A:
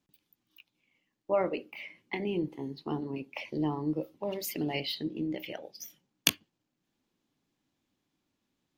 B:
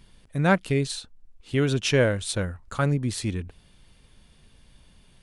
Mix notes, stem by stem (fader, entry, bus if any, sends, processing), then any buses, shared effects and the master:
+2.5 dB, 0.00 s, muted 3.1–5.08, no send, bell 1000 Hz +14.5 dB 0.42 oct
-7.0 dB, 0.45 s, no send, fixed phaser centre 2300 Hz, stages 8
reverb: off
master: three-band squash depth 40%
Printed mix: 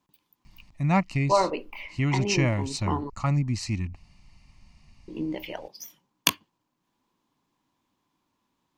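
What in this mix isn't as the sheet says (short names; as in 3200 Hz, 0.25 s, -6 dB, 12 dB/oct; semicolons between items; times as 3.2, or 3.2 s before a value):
stem B -7.0 dB -> +1.5 dB; master: missing three-band squash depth 40%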